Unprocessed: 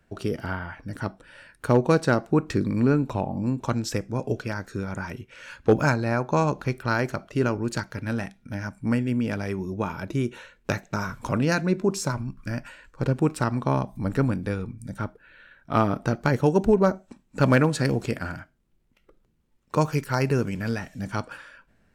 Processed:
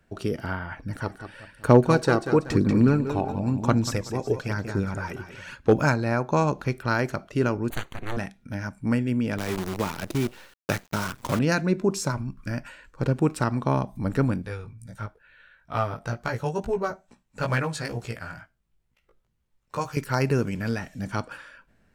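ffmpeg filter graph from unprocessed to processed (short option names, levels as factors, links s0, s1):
-filter_complex "[0:a]asettb=1/sr,asplit=3[s0][s1][s2];[s0]atrim=end=0.714[s3];[s1]atrim=start=0.71:end=5.55,asetpts=PTS-STARTPTS,afade=t=in:d=0.004:c=qsin,afade=t=out:st=4.836:d=0.004:c=qsin,aecho=1:1:189|378|567|756:0.316|0.12|0.0457|0.0174,atrim=end_sample=213444,aphaser=in_gain=1:out_gain=1:delay=2.7:decay=0.4:speed=1:type=sinusoidal[s4];[s2]atrim=start=5.546[s5];[s3][s4]acrossfade=d=0.004:c1=hsin:c2=qsin[s6];[s6][s5]acrossfade=d=0.004:c1=qsin:c2=hsin,asettb=1/sr,asplit=3[s7][s8][s9];[s7]atrim=end=7.704[s10];[s8]atrim=start=7.7:end=8.17,asetpts=PTS-STARTPTS,afade=t=in:d=0.004:c=qsin,afade=t=out:st=0.466:d=0.004:c=qsin,aeval=exprs='abs(val(0))':c=same,asuperstop=centerf=5200:order=4:qfactor=3.2[s11];[s9]atrim=start=8.166[s12];[s10][s11]acrossfade=d=0.004:c1=hsin:c2=qsin[s13];[s13][s12]acrossfade=d=0.004:c1=qsin:c2=hsin,asettb=1/sr,asplit=3[s14][s15][s16];[s14]atrim=end=9.384[s17];[s15]atrim=start=9.38:end=11.39,asetpts=PTS-STARTPTS,afade=t=in:d=0.004:c=qsin,afade=t=out:st=2.006:d=0.004:c=qsin,highpass=62,acrusher=bits=6:dc=4:mix=0:aa=0.000001[s18];[s16]atrim=start=11.386[s19];[s17][s18]acrossfade=d=0.004:c1=hsin:c2=qsin[s20];[s20][s19]acrossfade=d=0.004:c1=qsin:c2=hsin,asettb=1/sr,asplit=3[s21][s22][s23];[s21]atrim=end=14.424[s24];[s22]atrim=start=14.42:end=19.97,asetpts=PTS-STARTPTS,afade=t=in:d=0.004:c=qsin,afade=t=out:st=5.546:d=0.004:c=qsin,equalizer=f=280:t=o:w=1.2:g=-10.5,flanger=delay=16.5:depth=2.2:speed=2.2[s25];[s23]atrim=start=19.966[s26];[s24][s25]acrossfade=d=0.004:c1=hsin:c2=qsin[s27];[s27][s26]acrossfade=d=0.004:c1=qsin:c2=hsin"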